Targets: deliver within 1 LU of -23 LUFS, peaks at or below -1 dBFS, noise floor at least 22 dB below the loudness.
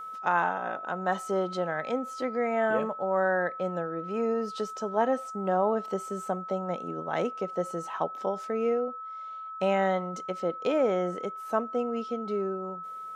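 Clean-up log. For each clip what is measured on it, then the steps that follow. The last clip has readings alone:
steady tone 1300 Hz; tone level -37 dBFS; loudness -30.0 LUFS; peak -12.5 dBFS; loudness target -23.0 LUFS
-> notch 1300 Hz, Q 30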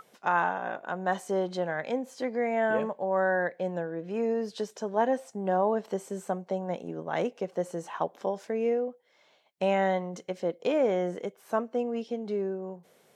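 steady tone none; loudness -30.5 LUFS; peak -13.0 dBFS; loudness target -23.0 LUFS
-> gain +7.5 dB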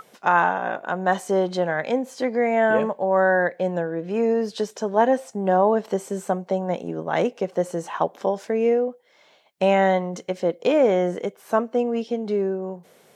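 loudness -23.0 LUFS; peak -5.5 dBFS; noise floor -57 dBFS

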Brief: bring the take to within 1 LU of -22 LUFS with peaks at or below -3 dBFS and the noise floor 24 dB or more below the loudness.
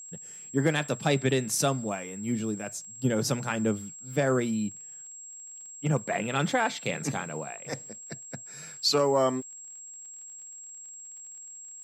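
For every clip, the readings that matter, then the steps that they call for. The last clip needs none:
ticks 46/s; steady tone 7600 Hz; tone level -42 dBFS; loudness -29.0 LUFS; peak -12.5 dBFS; loudness target -22.0 LUFS
-> de-click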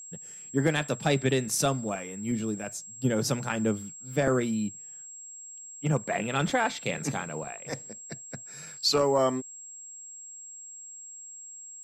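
ticks 0.084/s; steady tone 7600 Hz; tone level -42 dBFS
-> notch 7600 Hz, Q 30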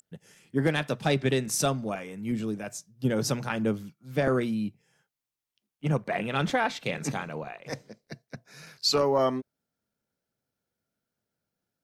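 steady tone none; loudness -28.5 LUFS; peak -11.5 dBFS; loudness target -22.0 LUFS
-> gain +6.5 dB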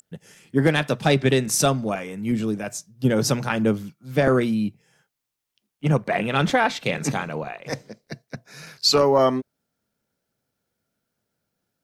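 loudness -22.0 LUFS; peak -5.0 dBFS; noise floor -81 dBFS

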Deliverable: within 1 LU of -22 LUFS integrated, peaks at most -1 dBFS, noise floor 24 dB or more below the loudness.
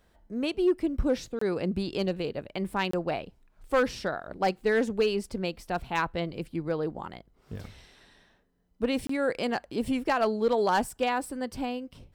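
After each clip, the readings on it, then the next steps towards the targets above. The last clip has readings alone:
clipped 0.3%; flat tops at -17.5 dBFS; dropouts 3; longest dropout 24 ms; loudness -29.5 LUFS; peak -17.5 dBFS; loudness target -22.0 LUFS
-> clip repair -17.5 dBFS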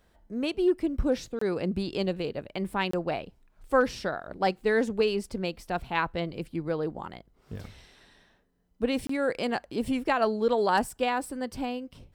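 clipped 0.0%; dropouts 3; longest dropout 24 ms
-> interpolate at 1.39/2.91/9.07, 24 ms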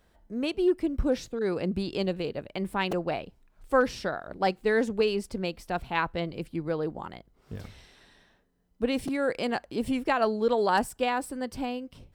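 dropouts 0; loudness -29.0 LUFS; peak -11.0 dBFS; loudness target -22.0 LUFS
-> gain +7 dB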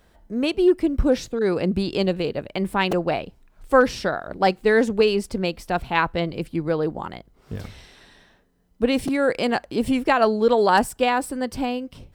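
loudness -22.0 LUFS; peak -4.0 dBFS; noise floor -59 dBFS

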